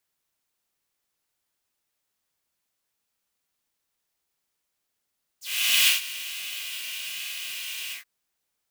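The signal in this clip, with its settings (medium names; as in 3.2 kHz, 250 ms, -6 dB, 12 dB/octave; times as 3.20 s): synth patch with vibrato A3, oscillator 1 triangle, oscillator 2 square, interval 0 st, detune 22 cents, oscillator 2 level -6.5 dB, sub -5 dB, noise -5 dB, filter highpass, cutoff 1.8 kHz, Q 4.4, filter envelope 2 oct, filter decay 0.06 s, filter sustain 30%, attack 457 ms, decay 0.14 s, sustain -16.5 dB, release 0.12 s, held 2.51 s, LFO 1.2 Hz, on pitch 50 cents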